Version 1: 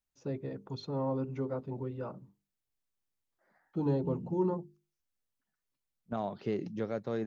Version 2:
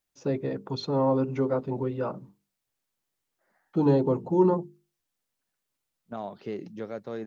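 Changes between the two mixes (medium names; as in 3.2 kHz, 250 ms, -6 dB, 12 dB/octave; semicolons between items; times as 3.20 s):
first voice +10.5 dB; master: add bass shelf 110 Hz -11 dB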